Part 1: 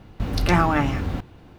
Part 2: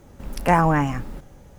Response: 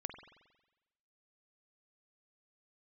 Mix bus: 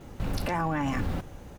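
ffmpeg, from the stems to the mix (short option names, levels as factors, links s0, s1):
-filter_complex "[0:a]acompressor=threshold=0.0794:ratio=6,volume=0.75[s0];[1:a]alimiter=limit=0.158:level=0:latency=1,adelay=6.9,volume=1.12[s1];[s0][s1]amix=inputs=2:normalize=0,alimiter=limit=0.0944:level=0:latency=1:release=24"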